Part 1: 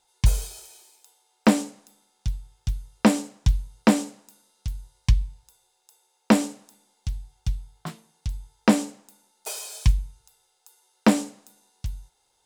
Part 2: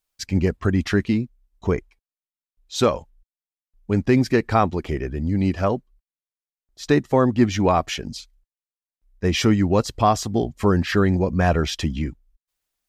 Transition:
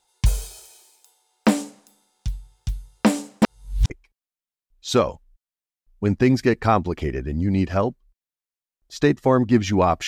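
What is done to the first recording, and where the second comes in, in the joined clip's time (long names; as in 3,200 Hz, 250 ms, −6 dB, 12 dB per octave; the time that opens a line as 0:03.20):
part 1
0:03.42–0:03.90: reverse
0:03.90: continue with part 2 from 0:01.77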